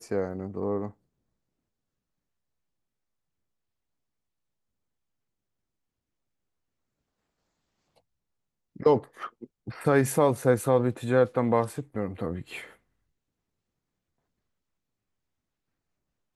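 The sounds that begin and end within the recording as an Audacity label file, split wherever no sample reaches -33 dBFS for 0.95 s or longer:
8.800000	12.610000	sound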